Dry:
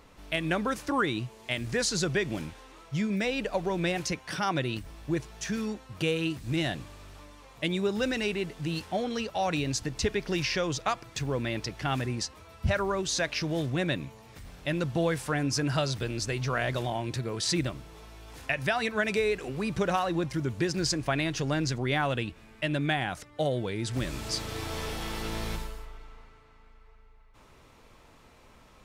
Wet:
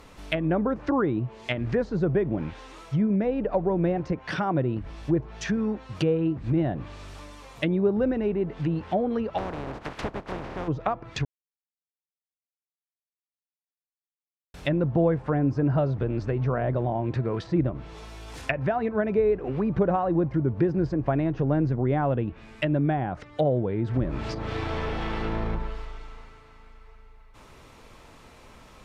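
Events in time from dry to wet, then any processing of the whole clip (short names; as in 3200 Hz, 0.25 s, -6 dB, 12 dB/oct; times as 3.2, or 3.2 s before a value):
9.37–10.67 spectral contrast lowered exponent 0.15
11.25–14.54 mute
whole clip: treble ducked by the level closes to 780 Hz, closed at -27 dBFS; gain +6 dB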